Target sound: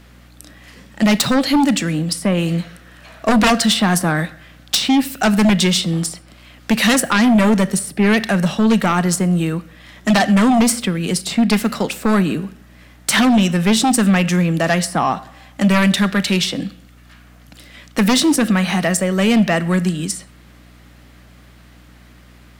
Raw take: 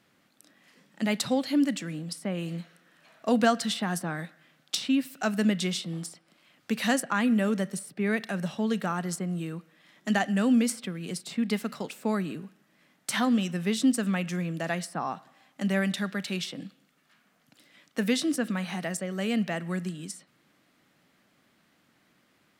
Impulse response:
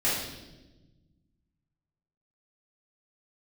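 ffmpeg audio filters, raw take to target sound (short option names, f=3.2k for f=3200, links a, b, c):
-filter_complex "[0:a]aeval=exprs='val(0)+0.000891*(sin(2*PI*60*n/s)+sin(2*PI*2*60*n/s)/2+sin(2*PI*3*60*n/s)/3+sin(2*PI*4*60*n/s)/4+sin(2*PI*5*60*n/s)/5)':c=same,aeval=exprs='0.335*sin(PI/2*3.98*val(0)/0.335)':c=same,asplit=2[a][b];[1:a]atrim=start_sample=2205,atrim=end_sample=6174,highshelf=f=10k:g=10[c];[b][c]afir=irnorm=-1:irlink=0,volume=-30dB[d];[a][d]amix=inputs=2:normalize=0"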